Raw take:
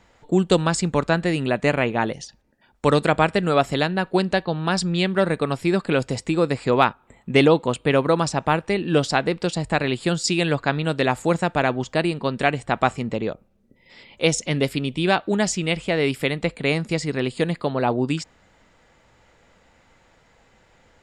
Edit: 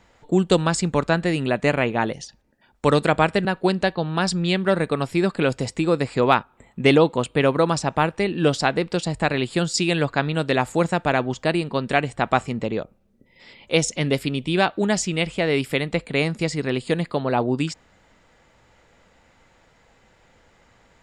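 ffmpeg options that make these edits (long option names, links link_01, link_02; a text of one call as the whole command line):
ffmpeg -i in.wav -filter_complex "[0:a]asplit=2[link_01][link_02];[link_01]atrim=end=3.452[link_03];[link_02]atrim=start=3.948[link_04];[link_03][link_04]acrossfade=duration=0.004:curve1=hsin:curve2=hsin" out.wav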